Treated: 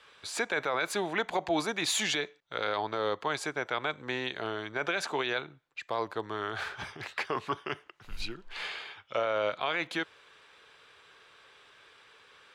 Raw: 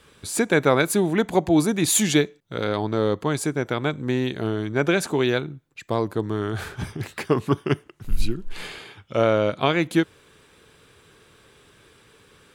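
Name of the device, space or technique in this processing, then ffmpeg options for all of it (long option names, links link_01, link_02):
DJ mixer with the lows and highs turned down: -filter_complex "[0:a]acrossover=split=560 5600:gain=0.112 1 0.126[link_01][link_02][link_03];[link_01][link_02][link_03]amix=inputs=3:normalize=0,alimiter=limit=-19dB:level=0:latency=1:release=30"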